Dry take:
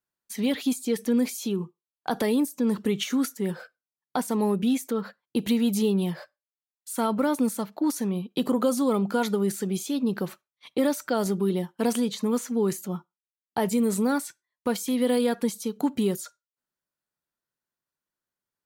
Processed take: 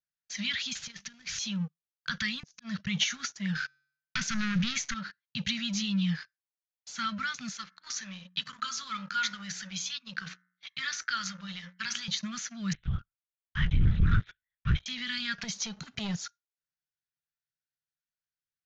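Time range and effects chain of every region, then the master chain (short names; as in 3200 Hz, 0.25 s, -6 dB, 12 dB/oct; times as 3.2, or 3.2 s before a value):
0.75–1.39 CVSD 64 kbps + compressor 8:1, threshold -31 dBFS
2.43–2.87 LPF 6500 Hz 24 dB/oct + auto swell 0.123 s
3.55–4.94 sample leveller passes 3 + resonator 140 Hz, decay 0.66 s, mix 40%
7.52–12.08 resonant low shelf 560 Hz -9.5 dB, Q 1.5 + de-hum 60.29 Hz, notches 36
12.73–14.86 doubler 14 ms -9 dB + LPC vocoder at 8 kHz whisper
15.38–16.16 careless resampling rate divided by 2×, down filtered, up zero stuff + three-band squash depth 100%
whole clip: elliptic band-stop 160–1500 Hz, stop band 40 dB; sample leveller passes 2; steep low-pass 6700 Hz 96 dB/oct; gain -2 dB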